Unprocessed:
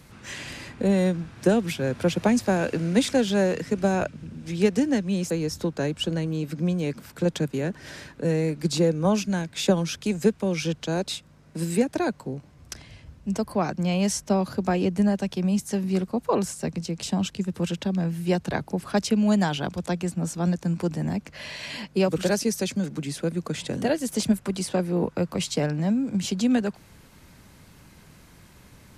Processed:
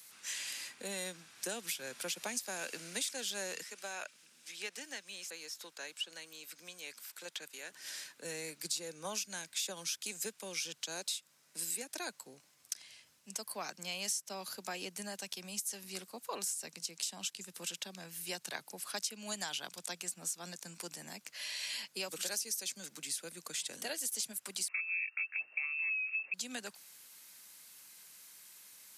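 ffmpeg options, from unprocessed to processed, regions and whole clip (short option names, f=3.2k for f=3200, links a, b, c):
-filter_complex "[0:a]asettb=1/sr,asplit=3[a][b][c];[a]atrim=end=3.634[d];[b]atrim=start=3.63:end=7.72,asetpts=PTS-STARTPTS,afade=t=in:d=0.004:c=qsin,afade=t=out:st=4.086:d=0.004:c=qsin,highpass=f=840:p=1,acrossover=split=3700[e][f];[f]acompressor=threshold=-50dB:ratio=4:attack=1:release=60[g];[e][g]amix=inputs=2:normalize=0[h];[c]atrim=start=7.716[i];[d][h]acrossfade=d=0.004:c1=hsin:c2=qsin[j];[j][i]acrossfade=d=0.004:c1=qsin:c2=hsin,asettb=1/sr,asplit=3[k][l][m];[k]atrim=end=24.684[n];[l]atrim=start=24.68:end=26.34,asetpts=PTS-STARTPTS,afade=t=in:d=0.004:c=qsin,afade=t=out:st=1.656:d=0.004:c=qsin,lowpass=f=2.4k:t=q:w=0.5098,lowpass=f=2.4k:t=q:w=0.6013,lowpass=f=2.4k:t=q:w=0.9,lowpass=f=2.4k:t=q:w=2.563,afreqshift=-2800,bandreject=f=50:t=h:w=6,bandreject=f=100:t=h:w=6,bandreject=f=150:t=h:w=6,bandreject=f=200:t=h:w=6,bandreject=f=250:t=h:w=6,bandreject=f=300:t=h:w=6,bandreject=f=350:t=h:w=6,bandreject=f=400:t=h:w=6[o];[m]atrim=start=26.336[p];[n][o]acrossfade=d=0.004:c1=hsin:c2=qsin[q];[q][p]acrossfade=d=0.004:c1=qsin:c2=hsin,highpass=120,aderivative,acompressor=threshold=-39dB:ratio=4,volume=4dB"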